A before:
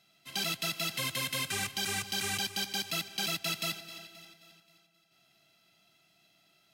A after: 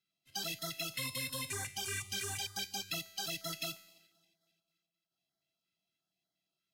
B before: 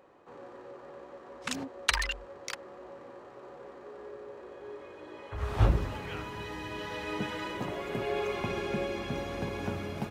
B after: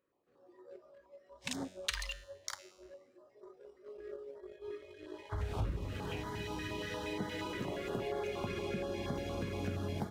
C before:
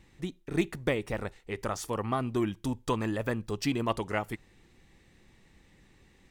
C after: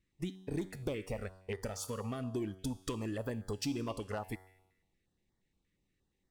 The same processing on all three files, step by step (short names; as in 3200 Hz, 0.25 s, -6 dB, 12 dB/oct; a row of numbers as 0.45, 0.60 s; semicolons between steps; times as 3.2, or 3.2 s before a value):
spectral noise reduction 18 dB; sample leveller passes 1; compressor 4:1, threshold -35 dBFS; resonator 94 Hz, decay 0.99 s, harmonics all, mix 60%; stepped notch 8.5 Hz 790–2600 Hz; gain +7 dB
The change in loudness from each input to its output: -5.5, -6.0, -7.0 LU